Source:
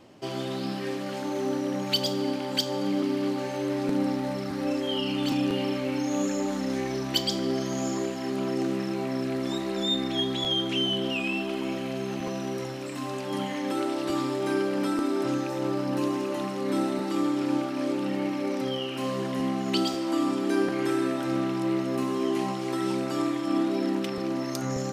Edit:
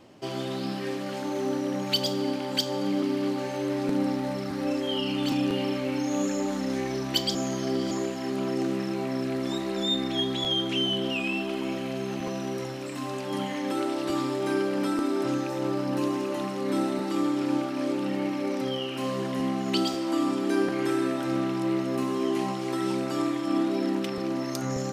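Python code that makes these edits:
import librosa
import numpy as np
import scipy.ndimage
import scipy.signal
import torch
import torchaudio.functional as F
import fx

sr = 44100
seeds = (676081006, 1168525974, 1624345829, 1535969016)

y = fx.edit(x, sr, fx.reverse_span(start_s=7.35, length_s=0.56), tone=tone)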